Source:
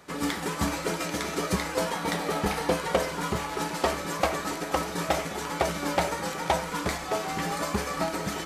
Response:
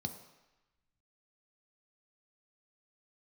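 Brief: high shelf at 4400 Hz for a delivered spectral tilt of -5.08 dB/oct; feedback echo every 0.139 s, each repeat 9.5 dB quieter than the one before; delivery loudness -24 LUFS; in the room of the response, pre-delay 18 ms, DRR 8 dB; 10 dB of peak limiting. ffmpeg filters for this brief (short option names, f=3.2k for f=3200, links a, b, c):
-filter_complex "[0:a]highshelf=f=4.4k:g=-4.5,alimiter=limit=-19dB:level=0:latency=1,aecho=1:1:139|278|417|556:0.335|0.111|0.0365|0.012,asplit=2[a][b];[1:a]atrim=start_sample=2205,adelay=18[c];[b][c]afir=irnorm=-1:irlink=0,volume=-7.5dB[d];[a][d]amix=inputs=2:normalize=0,volume=4.5dB"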